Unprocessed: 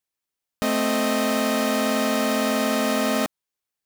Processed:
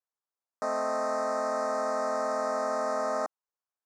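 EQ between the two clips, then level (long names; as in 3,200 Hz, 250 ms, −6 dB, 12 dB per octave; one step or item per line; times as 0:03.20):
band-pass filter 680–6,100 Hz
Butterworth band-reject 3,000 Hz, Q 0.56
high-frequency loss of the air 72 metres
0.0 dB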